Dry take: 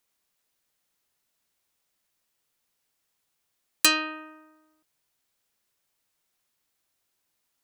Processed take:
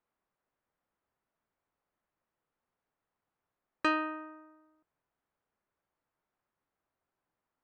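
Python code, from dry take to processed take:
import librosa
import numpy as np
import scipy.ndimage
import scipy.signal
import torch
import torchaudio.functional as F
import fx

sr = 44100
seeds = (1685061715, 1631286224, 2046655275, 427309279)

y = scipy.signal.sosfilt(scipy.signal.cheby1(2, 1.0, 1200.0, 'lowpass', fs=sr, output='sos'), x)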